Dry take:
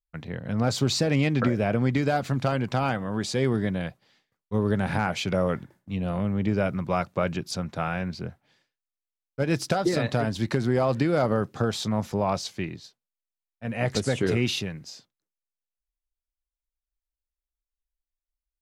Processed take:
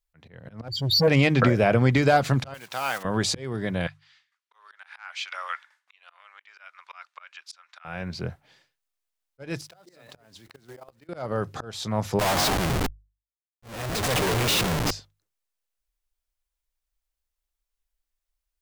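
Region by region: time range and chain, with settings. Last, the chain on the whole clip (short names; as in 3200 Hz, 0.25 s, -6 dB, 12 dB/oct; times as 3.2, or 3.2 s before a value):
0.68–1.08 spectral contrast raised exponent 3.7 + sample leveller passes 2 + notch comb 1300 Hz
2.54–3.05 block floating point 5-bit + HPF 1400 Hz 6 dB/oct
3.87–7.85 HPF 1200 Hz 24 dB/oct + air absorption 68 m
9.61–11.09 block floating point 5-bit + level quantiser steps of 22 dB + low shelf 150 Hz -11.5 dB
12.19–14.91 frequency-shifting echo 0.105 s, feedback 55%, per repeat +48 Hz, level -14 dB + Schmitt trigger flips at -38 dBFS
whole clip: bell 230 Hz -6 dB 1.2 oct; auto swell 0.55 s; notches 50/100/150 Hz; gain +7 dB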